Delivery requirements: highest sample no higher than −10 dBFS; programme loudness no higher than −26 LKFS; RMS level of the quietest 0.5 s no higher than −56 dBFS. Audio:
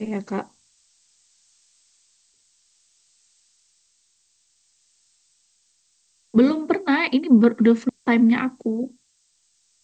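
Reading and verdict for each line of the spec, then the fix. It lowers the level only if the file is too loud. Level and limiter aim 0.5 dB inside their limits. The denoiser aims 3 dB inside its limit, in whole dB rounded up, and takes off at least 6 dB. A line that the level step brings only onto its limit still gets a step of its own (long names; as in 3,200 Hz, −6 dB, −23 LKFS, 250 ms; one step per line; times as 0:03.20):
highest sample −5.0 dBFS: out of spec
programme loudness −20.0 LKFS: out of spec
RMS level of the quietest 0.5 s −66 dBFS: in spec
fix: level −6.5 dB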